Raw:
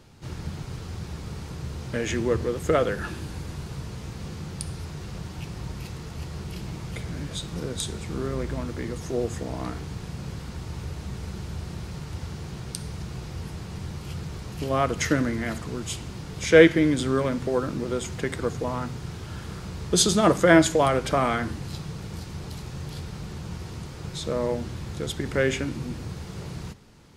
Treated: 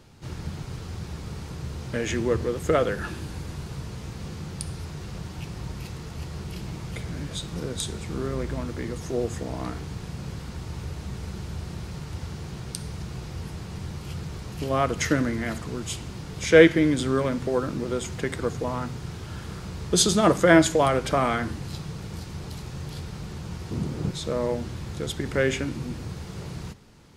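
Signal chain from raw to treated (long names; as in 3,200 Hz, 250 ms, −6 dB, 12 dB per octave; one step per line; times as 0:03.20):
0:23.71–0:24.11: parametric band 240 Hz +13 dB 2.2 octaves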